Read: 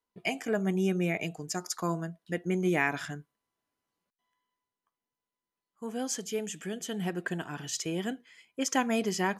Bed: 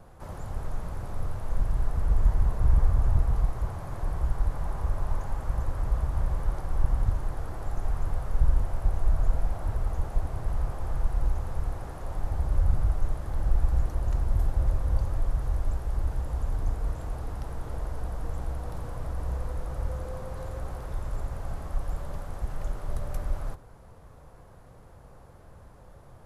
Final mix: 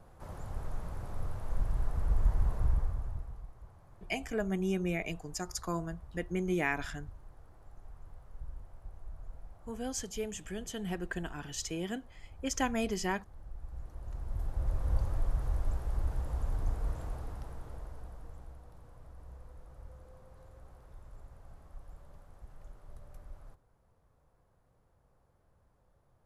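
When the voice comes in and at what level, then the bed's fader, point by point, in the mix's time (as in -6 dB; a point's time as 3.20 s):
3.85 s, -4.0 dB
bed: 2.59 s -5.5 dB
3.44 s -22 dB
13.53 s -22 dB
14.91 s -4.5 dB
17.01 s -4.5 dB
18.71 s -19 dB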